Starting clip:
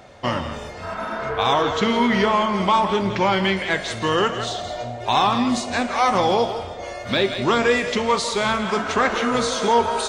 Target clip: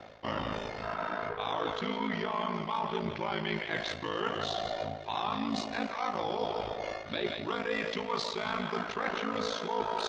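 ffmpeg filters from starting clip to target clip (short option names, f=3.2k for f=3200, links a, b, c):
-af "lowpass=f=5.3k:w=0.5412,lowpass=f=5.3k:w=1.3066,lowshelf=f=73:g=-10.5,areverse,acompressor=threshold=-28dB:ratio=6,areverse,aeval=exprs='val(0)*sin(2*PI*27*n/s)':c=same,aecho=1:1:278|556|834|1112:0.1|0.054|0.0292|0.0157"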